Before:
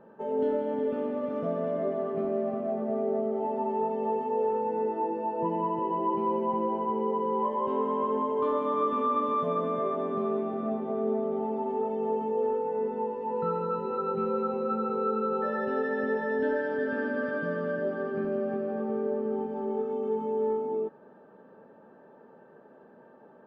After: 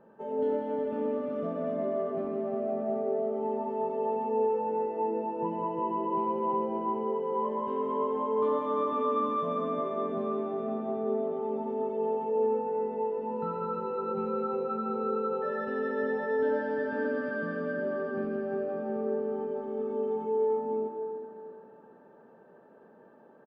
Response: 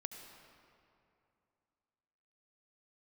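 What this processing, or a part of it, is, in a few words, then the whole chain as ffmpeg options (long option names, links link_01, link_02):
cave: -filter_complex "[0:a]aecho=1:1:261:0.15[link_01];[1:a]atrim=start_sample=2205[link_02];[link_01][link_02]afir=irnorm=-1:irlink=0"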